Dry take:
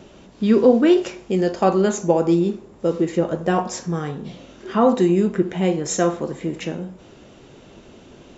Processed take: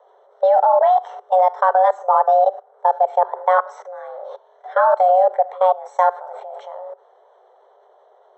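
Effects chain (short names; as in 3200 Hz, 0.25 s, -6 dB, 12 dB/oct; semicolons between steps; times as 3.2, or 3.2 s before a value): level quantiser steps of 20 dB; running mean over 20 samples; frequency shift +370 Hz; gain +7.5 dB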